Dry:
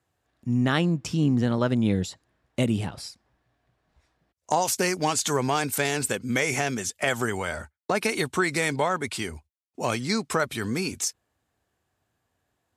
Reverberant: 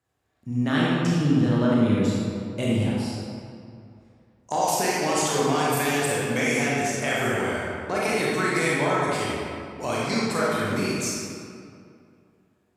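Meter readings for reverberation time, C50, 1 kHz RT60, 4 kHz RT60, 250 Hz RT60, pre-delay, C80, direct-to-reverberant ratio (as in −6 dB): 2.4 s, −3.5 dB, 2.4 s, 1.4 s, 2.4 s, 24 ms, −1.0 dB, −6.5 dB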